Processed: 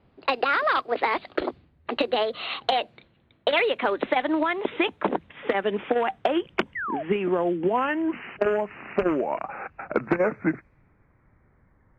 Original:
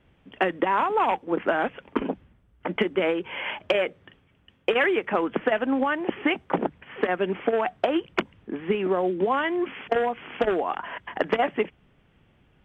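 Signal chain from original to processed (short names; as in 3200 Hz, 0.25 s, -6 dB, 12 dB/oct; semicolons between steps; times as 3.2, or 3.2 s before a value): speed glide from 147% -> 64%; low-pass opened by the level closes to 2100 Hz, open at -23 dBFS; painted sound fall, 6.75–7.03, 590–2100 Hz -30 dBFS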